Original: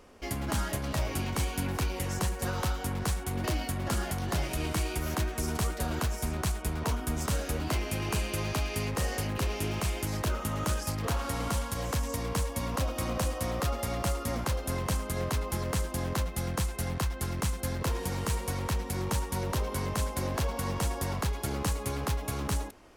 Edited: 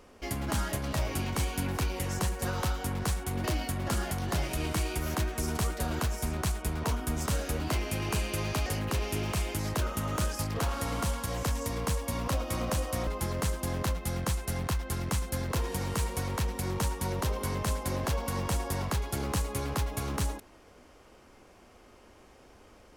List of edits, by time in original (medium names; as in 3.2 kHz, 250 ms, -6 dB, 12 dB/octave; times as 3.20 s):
8.66–9.14 s: delete
13.55–15.38 s: delete